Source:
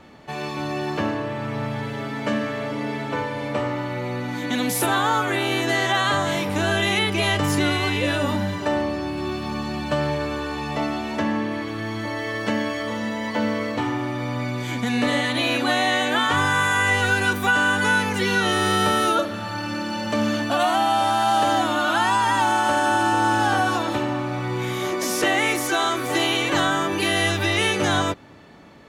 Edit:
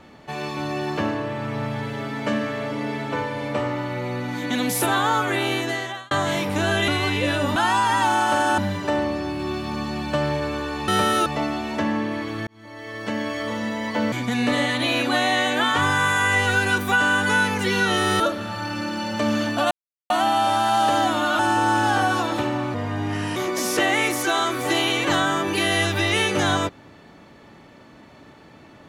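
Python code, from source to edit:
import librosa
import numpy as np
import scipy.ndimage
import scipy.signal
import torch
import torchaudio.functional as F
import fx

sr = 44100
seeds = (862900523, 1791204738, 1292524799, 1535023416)

y = fx.edit(x, sr, fx.fade_out_span(start_s=5.47, length_s=0.64),
    fx.cut(start_s=6.88, length_s=0.8),
    fx.fade_in_span(start_s=11.87, length_s=0.98),
    fx.cut(start_s=13.52, length_s=1.15),
    fx.move(start_s=18.75, length_s=0.38, to_s=10.66),
    fx.insert_silence(at_s=20.64, length_s=0.39),
    fx.move(start_s=21.93, length_s=1.02, to_s=8.36),
    fx.speed_span(start_s=24.3, length_s=0.51, speed=0.82), tone=tone)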